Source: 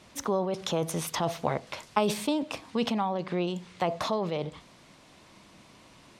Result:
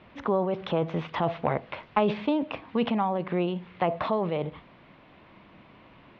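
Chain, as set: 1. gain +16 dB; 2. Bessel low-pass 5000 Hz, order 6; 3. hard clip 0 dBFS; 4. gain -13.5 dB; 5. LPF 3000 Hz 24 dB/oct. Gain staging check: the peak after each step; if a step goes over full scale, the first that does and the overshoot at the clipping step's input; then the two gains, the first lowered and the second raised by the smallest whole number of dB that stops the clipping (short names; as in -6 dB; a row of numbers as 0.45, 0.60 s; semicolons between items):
+5.0, +5.0, 0.0, -13.5, -12.0 dBFS; step 1, 5.0 dB; step 1 +11 dB, step 4 -8.5 dB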